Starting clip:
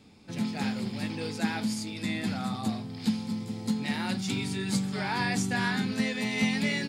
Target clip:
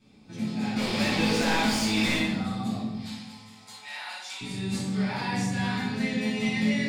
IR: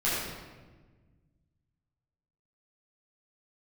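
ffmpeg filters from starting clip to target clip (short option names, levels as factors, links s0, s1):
-filter_complex "[0:a]asettb=1/sr,asplit=3[s0][s1][s2];[s0]atrim=end=0.764[s3];[s1]atrim=start=0.76:end=2.18,asetpts=PTS-STARTPTS,afade=t=in:d=0.004:c=qsin,afade=t=out:st=1.416:d=0.004:c=qsin,asplit=2[s4][s5];[s5]highpass=f=720:p=1,volume=28.2,asoftclip=type=tanh:threshold=0.141[s6];[s4][s6]amix=inputs=2:normalize=0,lowpass=f=5200:p=1,volume=0.501[s7];[s2]atrim=start=2.176[s8];[s3][s7]acrossfade=d=0.004:c1=hsin:c2=qsin[s9];[s9][s8]acrossfade=d=0.004:c1=qsin:c2=hsin,asettb=1/sr,asplit=3[s10][s11][s12];[s10]atrim=end=2.954[s13];[s11]atrim=start=2.95:end=4.41,asetpts=PTS-STARTPTS,afade=t=in:d=0.004:c=qsin,afade=t=out:st=1.456:d=0.004:c=qsin,highpass=f=750:w=0.5412,highpass=f=750:w=1.3066[s14];[s12]atrim=start=4.406[s15];[s13][s14]acrossfade=d=0.004:c1=hsin:c2=qsin[s16];[s16][s15]acrossfade=d=0.004:c1=qsin:c2=hsin[s17];[1:a]atrim=start_sample=2205,asetrate=70560,aresample=44100[s18];[s17][s18]afir=irnorm=-1:irlink=0,volume=0.398"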